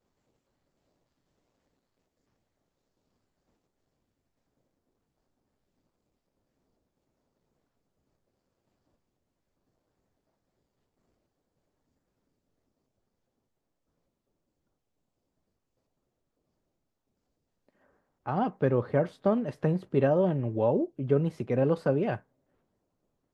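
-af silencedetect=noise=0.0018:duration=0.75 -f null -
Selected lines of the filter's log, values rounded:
silence_start: 0.00
silence_end: 17.69 | silence_duration: 17.69
silence_start: 22.21
silence_end: 23.33 | silence_duration: 1.12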